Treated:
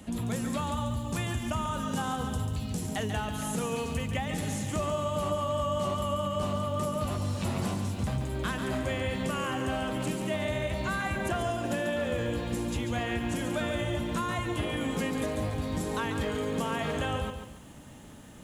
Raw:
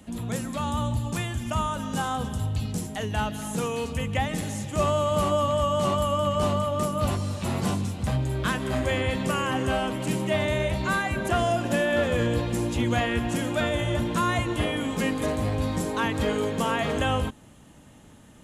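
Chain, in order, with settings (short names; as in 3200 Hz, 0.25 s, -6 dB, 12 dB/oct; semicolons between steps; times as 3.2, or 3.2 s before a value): compressor 5:1, threshold -31 dBFS, peak gain reduction 11 dB; lo-fi delay 0.141 s, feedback 35%, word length 10-bit, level -7 dB; gain +2 dB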